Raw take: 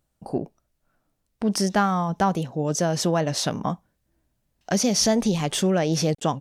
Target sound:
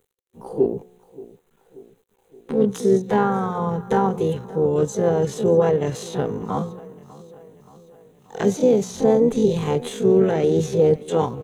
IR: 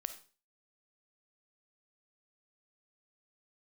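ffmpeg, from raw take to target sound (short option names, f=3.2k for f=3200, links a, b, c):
-filter_complex "[0:a]bandreject=f=180.7:t=h:w=4,bandreject=f=361.4:t=h:w=4,bandreject=f=542.1:t=h:w=4,bandreject=f=722.8:t=h:w=4,bandreject=f=903.5:t=h:w=4,bandreject=f=1.0842k:t=h:w=4,bandreject=f=1.2649k:t=h:w=4,bandreject=f=1.4456k:t=h:w=4,bandreject=f=1.6263k:t=h:w=4,bandreject=f=1.807k:t=h:w=4,bandreject=f=1.9877k:t=h:w=4,bandreject=f=2.1684k:t=h:w=4,bandreject=f=2.3491k:t=h:w=4,bandreject=f=2.5298k:t=h:w=4,asplit=4[a][b][c][d];[b]asetrate=29433,aresample=44100,atempo=1.49831,volume=-14dB[e];[c]asetrate=33038,aresample=44100,atempo=1.33484,volume=-15dB[f];[d]asetrate=52444,aresample=44100,atempo=0.840896,volume=-8dB[g];[a][e][f][g]amix=inputs=4:normalize=0,acrossover=split=500|1200[h][i][j];[j]acompressor=threshold=-36dB:ratio=4[k];[h][i][k]amix=inputs=3:normalize=0,aecho=1:1:325|650|975|1300|1625:0.1|0.057|0.0325|0.0185|0.0106,atempo=0.56,equalizer=f=4.6k:t=o:w=0.47:g=3,acrusher=bits=10:mix=0:aa=0.000001,superequalizer=7b=3.16:8b=0.631:14b=0.316"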